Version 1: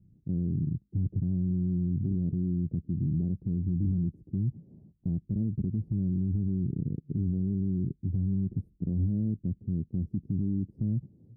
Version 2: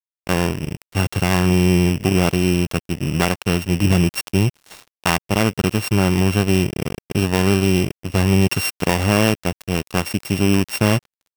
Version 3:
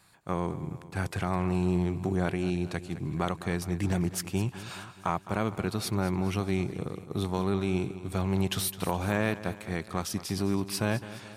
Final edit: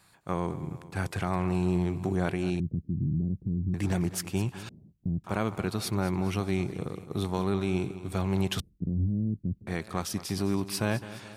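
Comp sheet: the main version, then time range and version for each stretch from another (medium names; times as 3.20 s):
3
2.60–3.74 s: from 1
4.69–5.24 s: from 1
8.60–9.67 s: from 1
not used: 2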